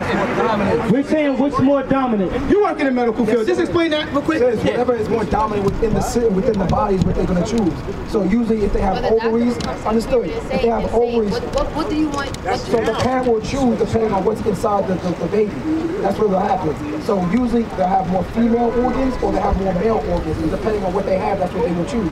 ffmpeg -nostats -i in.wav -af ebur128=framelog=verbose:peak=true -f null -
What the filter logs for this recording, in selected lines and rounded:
Integrated loudness:
  I:         -18.2 LUFS
  Threshold: -28.2 LUFS
Loudness range:
  LRA:         2.1 LU
  Threshold: -38.2 LUFS
  LRA low:   -19.1 LUFS
  LRA high:  -16.9 LUFS
True peak:
  Peak:       -3.4 dBFS